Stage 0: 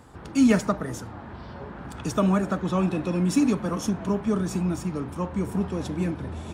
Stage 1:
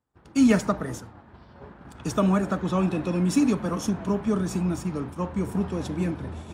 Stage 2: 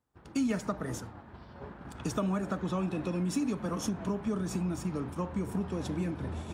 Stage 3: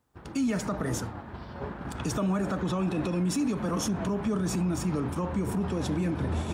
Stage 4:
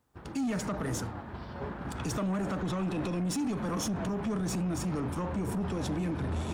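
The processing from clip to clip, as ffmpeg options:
-af "agate=range=-33dB:threshold=-31dB:ratio=3:detection=peak"
-af "acompressor=threshold=-31dB:ratio=3"
-af "alimiter=level_in=5.5dB:limit=-24dB:level=0:latency=1:release=39,volume=-5.5dB,volume=8.5dB"
-af "asoftclip=type=tanh:threshold=-27dB"

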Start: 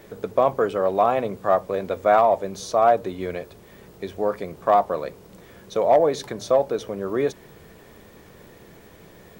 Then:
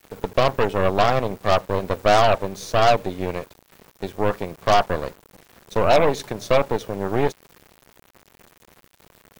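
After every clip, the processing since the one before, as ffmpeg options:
-af "aeval=exprs='0.398*(cos(1*acos(clip(val(0)/0.398,-1,1)))-cos(1*PI/2))+0.0891*(cos(6*acos(clip(val(0)/0.398,-1,1)))-cos(6*PI/2))':c=same,aeval=exprs='val(0)*gte(abs(val(0)),0.00891)':c=same"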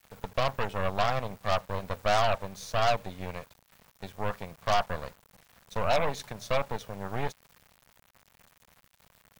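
-af "equalizer=f=350:w=1.5:g=-12.5,volume=-7dB"

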